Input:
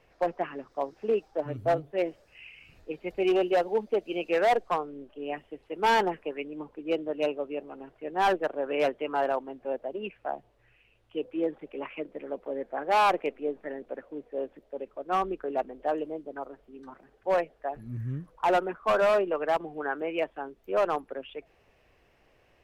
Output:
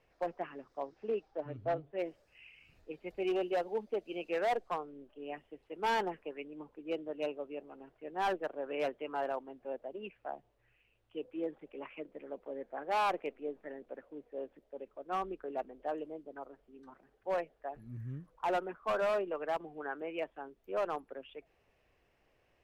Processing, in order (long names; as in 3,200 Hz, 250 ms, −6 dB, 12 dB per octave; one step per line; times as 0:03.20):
0:00.80–0:01.98: low-pass filter 6,200 Hz → 3,500 Hz 12 dB per octave
level −8.5 dB